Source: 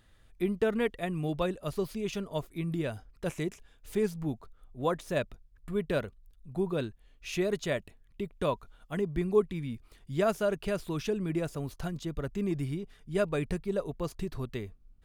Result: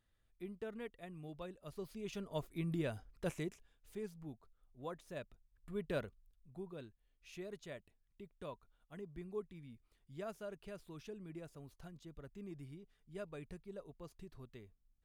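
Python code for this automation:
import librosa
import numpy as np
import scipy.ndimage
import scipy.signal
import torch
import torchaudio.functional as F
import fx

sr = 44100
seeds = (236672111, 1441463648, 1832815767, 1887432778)

y = fx.gain(x, sr, db=fx.line((1.54, -17.5), (2.48, -5.5), (3.26, -5.5), (3.95, -16.0), (5.22, -16.0), (6.02, -8.0), (6.69, -18.0)))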